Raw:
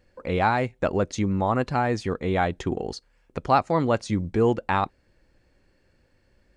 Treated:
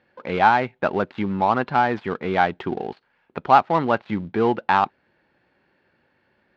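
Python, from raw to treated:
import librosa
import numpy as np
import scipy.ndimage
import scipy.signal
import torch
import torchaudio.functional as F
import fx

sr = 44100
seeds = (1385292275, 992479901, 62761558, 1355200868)

y = fx.dead_time(x, sr, dead_ms=0.098)
y = fx.cabinet(y, sr, low_hz=190.0, low_slope=12, high_hz=3700.0, hz=(290.0, 510.0, 860.0, 1500.0), db=(-4, -5, 5, 4))
y = y * 10.0 ** (3.5 / 20.0)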